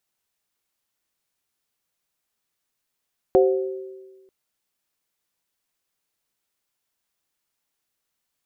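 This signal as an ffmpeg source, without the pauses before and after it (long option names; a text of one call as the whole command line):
ffmpeg -f lavfi -i "aevalsrc='0.237*pow(10,-3*t/1.39)*sin(2*PI*382*t)+0.178*pow(10,-3*t/1.05)*sin(2*PI*526*t)+0.0944*pow(10,-3*t/0.47)*sin(2*PI*729*t)':duration=0.94:sample_rate=44100" out.wav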